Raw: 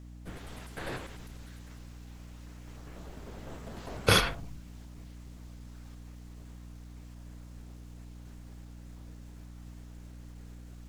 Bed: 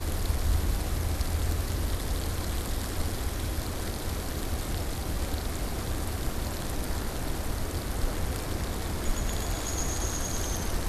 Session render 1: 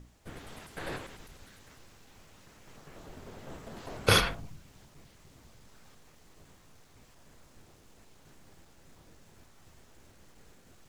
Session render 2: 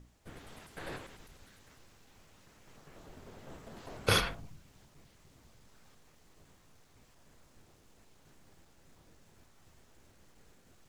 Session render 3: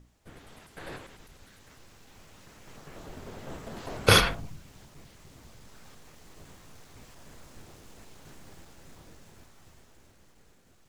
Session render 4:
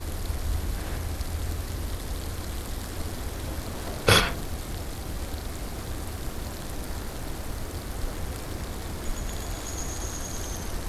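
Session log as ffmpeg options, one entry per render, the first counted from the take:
-af "bandreject=f=60:t=h:w=6,bandreject=f=120:t=h:w=6,bandreject=f=180:t=h:w=6,bandreject=f=240:t=h:w=6,bandreject=f=300:t=h:w=6"
-af "volume=-4.5dB"
-af "dynaudnorm=f=300:g=13:m=12dB"
-filter_complex "[1:a]volume=-2.5dB[a];[0:a][a]amix=inputs=2:normalize=0"

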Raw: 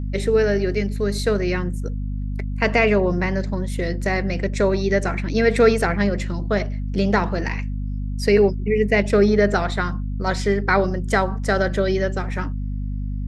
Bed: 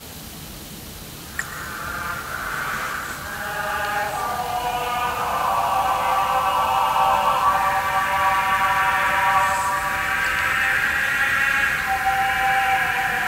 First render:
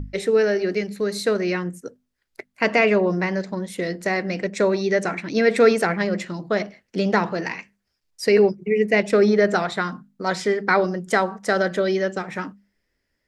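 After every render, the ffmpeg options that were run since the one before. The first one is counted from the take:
-af "bandreject=f=50:t=h:w=6,bandreject=f=100:t=h:w=6,bandreject=f=150:t=h:w=6,bandreject=f=200:t=h:w=6,bandreject=f=250:t=h:w=6"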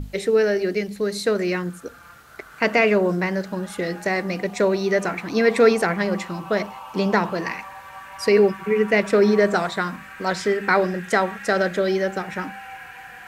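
-filter_complex "[1:a]volume=-18.5dB[a];[0:a][a]amix=inputs=2:normalize=0"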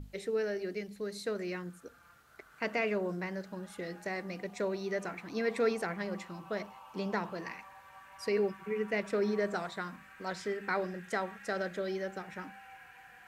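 -af "volume=-14.5dB"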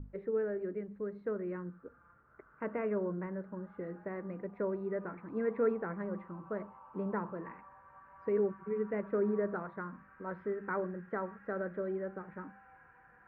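-af "lowpass=f=1.4k:w=0.5412,lowpass=f=1.4k:w=1.3066,equalizer=f=730:t=o:w=0.3:g=-10.5"

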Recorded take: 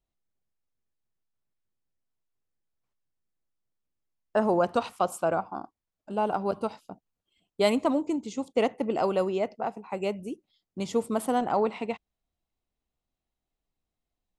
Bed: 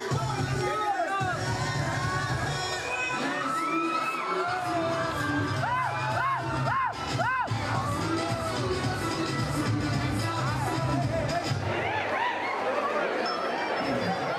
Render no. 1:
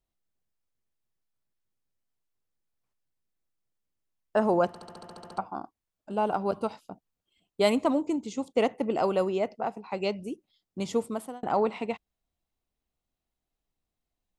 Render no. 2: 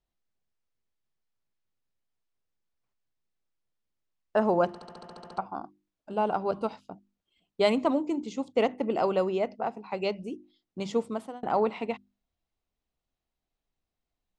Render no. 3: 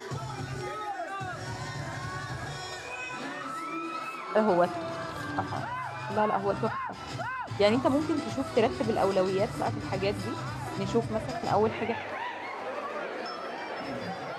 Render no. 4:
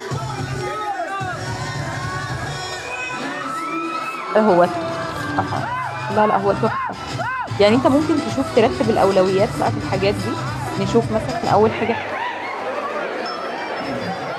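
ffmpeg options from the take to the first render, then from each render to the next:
-filter_complex "[0:a]asettb=1/sr,asplit=3[a][b][c];[a]atrim=end=9.804[d];[b]atrim=start=9.8:end=10.24,asetpts=PTS-STARTPTS,afade=t=in:d=0.004:c=qsin,afade=t=out:st=0.436:d=0.004:c=qsin,lowpass=f=4.8k:t=q:w=3.4[e];[c]atrim=start=10.236[f];[d][e]acrossfade=d=0.004:c1=hsin:c2=qsin[g];[g][f]acrossfade=d=0.004:c1=qsin:c2=hsin,asplit=12[h][i][j][k][l][m][n][o][p][q][r][s];[h]atrim=end=4.752[t];[i]atrim=start=4.678:end=4.752[u];[j]atrim=start=4.678:end=4.752[v];[k]atrim=start=4.678:end=4.752[w];[l]atrim=start=4.678:end=4.752[x];[m]atrim=start=4.678:end=4.752[y];[n]atrim=start=4.678:end=4.752[z];[o]atrim=start=4.678:end=4.752[aa];[p]atrim=start=4.678:end=4.752[ab];[q]atrim=start=4.678:end=4.752[ac];[r]atrim=start=5.378:end=11.43,asetpts=PTS-STARTPTS,afade=t=out:st=5.552:d=0.5[ad];[s]atrim=start=11.43,asetpts=PTS-STARTPTS,afade=t=in:d=0.004:c=hsin[ae];[t][u]acrossfade=d=0.004:c1=hsin:c2=hsin[af];[af][v]acrossfade=d=0.004:c1=hsin:c2=hsin[ag];[ag][w]acrossfade=d=0.004:c1=hsin:c2=hsin[ah];[ah][x]acrossfade=d=0.004:c1=hsin:c2=hsin[ai];[ai][y]acrossfade=d=0.004:c1=hsin:c2=hsin[aj];[aj][z]acrossfade=d=0.004:c1=hsin:c2=hsin[ak];[ak][aa]acrossfade=d=0.004:c1=hsin:c2=hsin[al];[al][ab]acrossfade=d=0.004:c1=hsin:c2=hsin[am];[am][ac]acrossfade=d=0.004:c1=hsin:c2=hsin[an];[ad][ae]concat=n=2:v=0:a=1[ao];[an][ao]acrossfade=d=0.004:c1=hsin:c2=hsin"
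-af "lowpass=5.8k,bandreject=f=50:t=h:w=6,bandreject=f=100:t=h:w=6,bandreject=f=150:t=h:w=6,bandreject=f=200:t=h:w=6,bandreject=f=250:t=h:w=6,bandreject=f=300:t=h:w=6,bandreject=f=350:t=h:w=6"
-filter_complex "[1:a]volume=-7.5dB[a];[0:a][a]amix=inputs=2:normalize=0"
-af "volume=11dB,alimiter=limit=-3dB:level=0:latency=1"

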